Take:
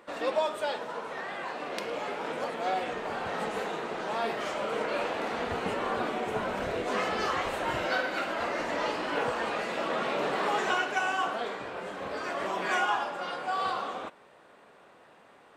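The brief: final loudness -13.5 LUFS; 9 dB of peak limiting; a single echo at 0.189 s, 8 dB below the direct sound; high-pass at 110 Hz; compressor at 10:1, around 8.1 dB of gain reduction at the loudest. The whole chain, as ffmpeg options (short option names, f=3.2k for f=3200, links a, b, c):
-af "highpass=110,acompressor=threshold=-31dB:ratio=10,alimiter=level_in=3.5dB:limit=-24dB:level=0:latency=1,volume=-3.5dB,aecho=1:1:189:0.398,volume=22.5dB"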